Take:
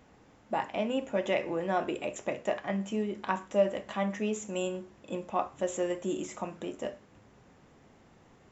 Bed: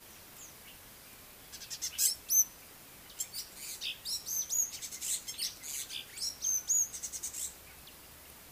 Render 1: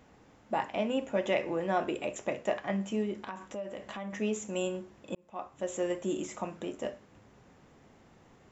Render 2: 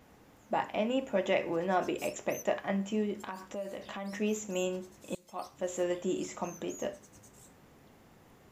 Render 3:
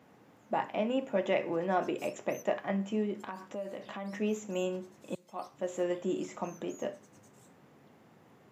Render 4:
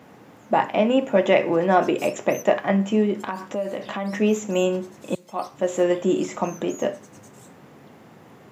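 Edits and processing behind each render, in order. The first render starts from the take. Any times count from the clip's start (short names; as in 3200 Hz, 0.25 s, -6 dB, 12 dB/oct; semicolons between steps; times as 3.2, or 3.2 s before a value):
3.2–4.13 compressor 4:1, threshold -37 dBFS; 5.15–5.9 fade in
add bed -20 dB
HPF 110 Hz 24 dB/oct; high shelf 3900 Hz -8.5 dB
gain +12 dB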